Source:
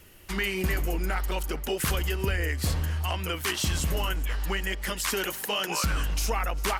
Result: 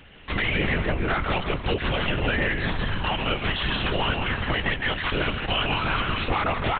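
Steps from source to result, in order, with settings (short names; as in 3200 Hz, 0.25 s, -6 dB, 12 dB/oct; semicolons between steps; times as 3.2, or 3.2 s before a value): low shelf 140 Hz -11.5 dB; compressor, threshold -27 dBFS, peak gain reduction 3.5 dB; wavefolder -26.5 dBFS; on a send: frequency-shifting echo 0.155 s, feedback 32%, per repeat -110 Hz, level -5 dB; on the sum: LPC vocoder at 8 kHz whisper; gain +8.5 dB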